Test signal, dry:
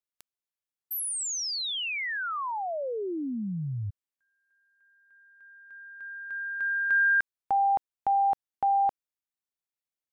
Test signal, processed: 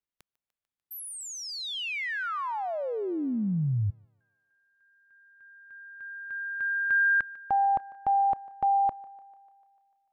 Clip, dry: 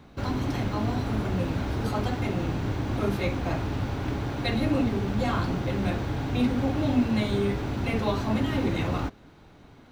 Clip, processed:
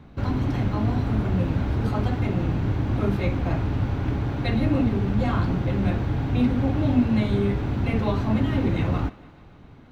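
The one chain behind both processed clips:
bass and treble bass +6 dB, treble −8 dB
feedback echo with a high-pass in the loop 148 ms, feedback 66%, high-pass 310 Hz, level −20 dB

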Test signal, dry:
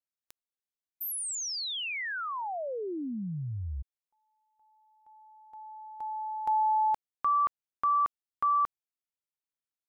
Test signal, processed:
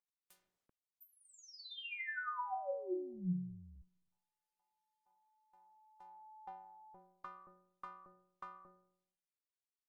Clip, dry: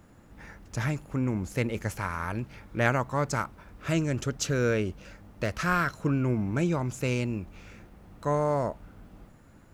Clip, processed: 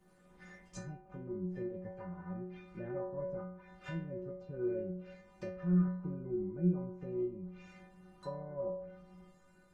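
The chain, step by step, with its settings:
treble cut that deepens with the level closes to 450 Hz, closed at −27.5 dBFS
stiff-string resonator 180 Hz, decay 0.81 s, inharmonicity 0.008
level +10.5 dB
Opus 20 kbit/s 48,000 Hz

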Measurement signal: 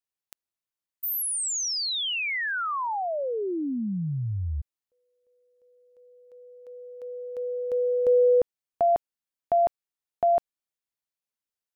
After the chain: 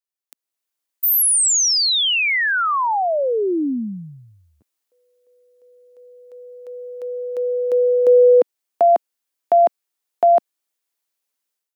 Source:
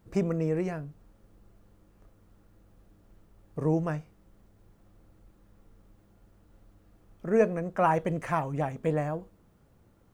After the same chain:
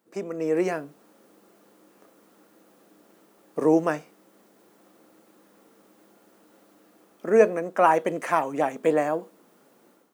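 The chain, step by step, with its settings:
high-pass filter 250 Hz 24 dB per octave
high-shelf EQ 5,700 Hz +4.5 dB
automatic gain control gain up to 13.5 dB
level −4 dB

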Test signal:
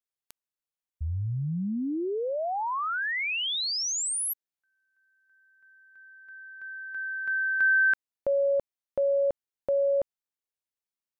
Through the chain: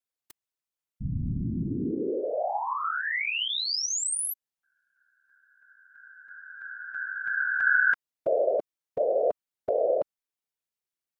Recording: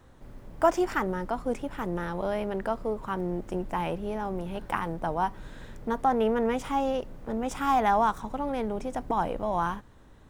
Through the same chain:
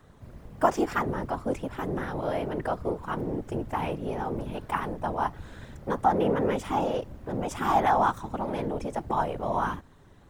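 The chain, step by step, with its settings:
random phases in short frames

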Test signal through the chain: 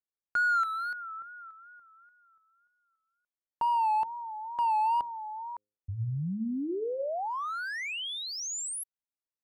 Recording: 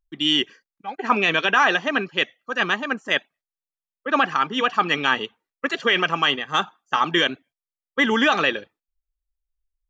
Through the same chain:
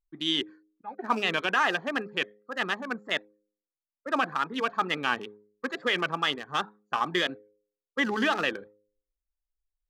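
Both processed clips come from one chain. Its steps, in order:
adaptive Wiener filter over 15 samples
tape wow and flutter 92 cents
hum removal 104.2 Hz, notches 5
level −6.5 dB

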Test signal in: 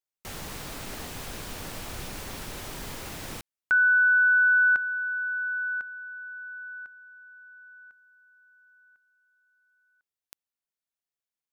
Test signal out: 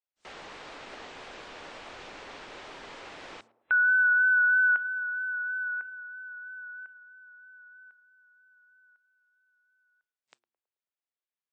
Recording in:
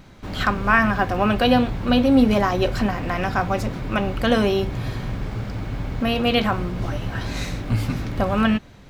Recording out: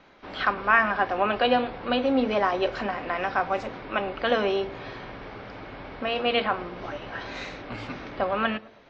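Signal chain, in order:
low-pass filter 7,200 Hz 12 dB per octave
three-way crossover with the lows and the highs turned down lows −18 dB, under 310 Hz, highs −14 dB, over 4,000 Hz
hum removal 115.4 Hz, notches 3
pitch vibrato 3.1 Hz 23 cents
on a send: feedback echo with a band-pass in the loop 108 ms, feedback 51%, band-pass 520 Hz, level −17 dB
on the sum: level −2 dB
WMA 64 kbit/s 32,000 Hz

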